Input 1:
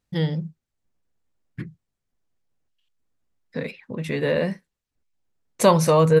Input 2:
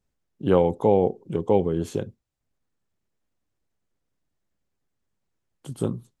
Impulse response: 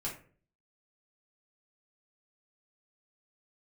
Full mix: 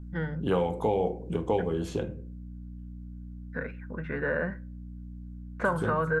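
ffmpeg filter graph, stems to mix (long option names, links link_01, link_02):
-filter_complex "[0:a]lowpass=frequency=1500:width_type=q:width=12,volume=-8.5dB,asplit=2[link_01][link_02];[link_02]volume=-21dB[link_03];[1:a]aeval=exprs='val(0)+0.00501*(sin(2*PI*60*n/s)+sin(2*PI*2*60*n/s)/2+sin(2*PI*3*60*n/s)/3+sin(2*PI*4*60*n/s)/4+sin(2*PI*5*60*n/s)/5)':channel_layout=same,volume=-3dB,asplit=2[link_04][link_05];[link_05]volume=-3.5dB[link_06];[2:a]atrim=start_sample=2205[link_07];[link_03][link_06]amix=inputs=2:normalize=0[link_08];[link_08][link_07]afir=irnorm=-1:irlink=0[link_09];[link_01][link_04][link_09]amix=inputs=3:normalize=0,acrossover=split=680|1800|6100[link_10][link_11][link_12][link_13];[link_10]acompressor=threshold=-28dB:ratio=4[link_14];[link_11]acompressor=threshold=-30dB:ratio=4[link_15];[link_12]acompressor=threshold=-42dB:ratio=4[link_16];[link_13]acompressor=threshold=-57dB:ratio=4[link_17];[link_14][link_15][link_16][link_17]amix=inputs=4:normalize=0,aeval=exprs='val(0)+0.00708*(sin(2*PI*60*n/s)+sin(2*PI*2*60*n/s)/2+sin(2*PI*3*60*n/s)/3+sin(2*PI*4*60*n/s)/4+sin(2*PI*5*60*n/s)/5)':channel_layout=same"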